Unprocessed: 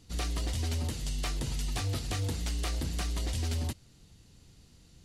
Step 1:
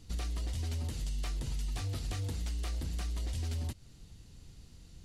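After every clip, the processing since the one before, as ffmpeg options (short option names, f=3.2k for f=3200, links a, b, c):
-af "lowshelf=f=77:g=9,acompressor=threshold=-34dB:ratio=4"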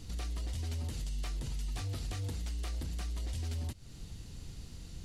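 -af "alimiter=level_in=14dB:limit=-24dB:level=0:latency=1:release=277,volume=-14dB,volume=7dB"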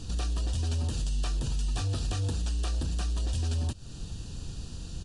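-af "asuperstop=centerf=2100:order=4:qfactor=3.7,aresample=22050,aresample=44100,volume=7.5dB"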